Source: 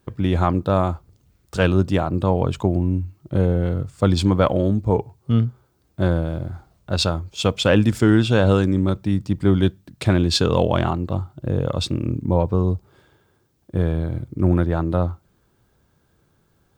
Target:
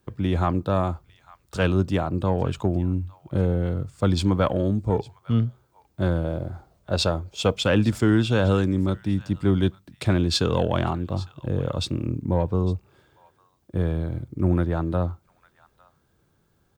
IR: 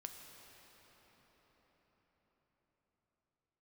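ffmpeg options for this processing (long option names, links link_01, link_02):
-filter_complex "[0:a]asettb=1/sr,asplit=3[link_01][link_02][link_03];[link_01]atrim=end=6.244[link_04];[link_02]atrim=start=6.24:end=7.54,asetpts=PTS-STARTPTS,afade=type=in:duration=0.004:curve=qsin,afade=type=out:start_time=1.296:duration=0.004:curve=qsin,equalizer=frequency=550:width_type=o:width=1.3:gain=6.5[link_05];[link_03]atrim=start=7.536[link_06];[link_04][link_05]acrossfade=duration=0.004:curve1=hsin:curve2=qsin[link_07];[link_07][link_06]acrossfade=duration=0.004:curve1=qsin:curve2=hsin,acrossover=split=340|810[link_08][link_09][link_10];[link_09]asoftclip=type=tanh:threshold=-16.5dB[link_11];[link_10]aecho=1:1:855:0.1[link_12];[link_08][link_11][link_12]amix=inputs=3:normalize=0,volume=-3.5dB"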